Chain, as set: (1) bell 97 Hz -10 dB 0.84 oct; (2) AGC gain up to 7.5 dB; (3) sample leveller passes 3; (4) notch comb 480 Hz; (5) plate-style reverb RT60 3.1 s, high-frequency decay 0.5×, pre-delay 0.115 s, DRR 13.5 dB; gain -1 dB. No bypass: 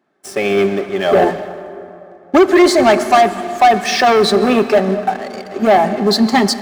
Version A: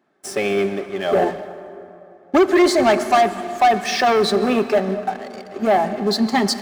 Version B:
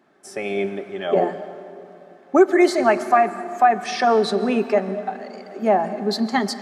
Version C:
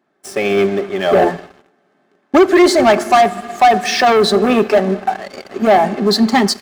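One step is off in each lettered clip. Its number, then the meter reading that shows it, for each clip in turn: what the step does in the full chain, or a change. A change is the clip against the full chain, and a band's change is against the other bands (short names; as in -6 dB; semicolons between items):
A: 2, momentary loudness spread change -1 LU; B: 3, 4 kHz band -4.5 dB; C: 5, momentary loudness spread change -5 LU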